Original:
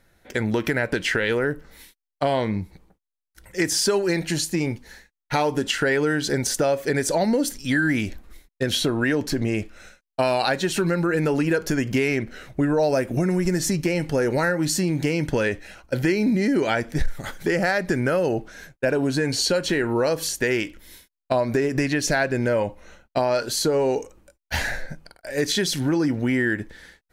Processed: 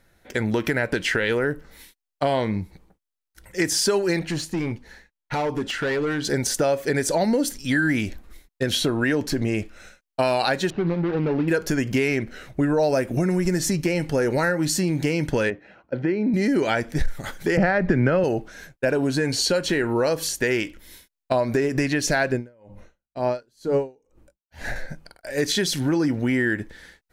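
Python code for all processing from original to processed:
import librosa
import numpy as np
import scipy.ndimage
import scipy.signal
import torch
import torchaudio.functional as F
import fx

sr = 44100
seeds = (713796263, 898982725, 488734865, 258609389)

y = fx.chain(x, sr, fx.clip_hard(threshold_db=-20.5),
    fx.high_shelf(hz=5700.0, db=-11.5), at=(4.19, 6.25))
y = fx.chain(y, sr, fx.median_filter(points=41),
    fx.bessel_lowpass(hz=3100.0, order=8), at=(10.7, 11.48))
y = fx.chain(y, sr, fx.highpass(hz=150.0, slope=12),
    fx.spacing_loss(db_at_10k=39), at=(15.5, 16.34))
y = fx.chain(y, sr, fx.lowpass(hz=2400.0, slope=12),
    fx.low_shelf(hz=180.0, db=8.5),
    fx.band_squash(depth_pct=100), at=(17.57, 18.24))
y = fx.chain(y, sr, fx.tilt_shelf(db=4.0, hz=740.0),
    fx.hum_notches(base_hz=50, count=4),
    fx.tremolo_db(hz=2.1, depth_db=37), at=(22.32, 24.76))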